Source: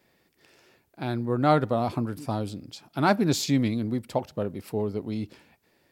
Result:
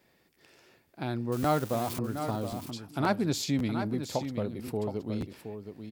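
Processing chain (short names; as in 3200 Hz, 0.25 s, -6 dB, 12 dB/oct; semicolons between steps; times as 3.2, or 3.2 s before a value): 1.32–1.99 switching spikes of -23.5 dBFS; in parallel at +2 dB: compressor, threshold -31 dBFS, peak gain reduction 15 dB; on the sum: echo 0.719 s -8.5 dB; crackling interface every 0.54 s, samples 512, repeat, from 0.34; gain -8 dB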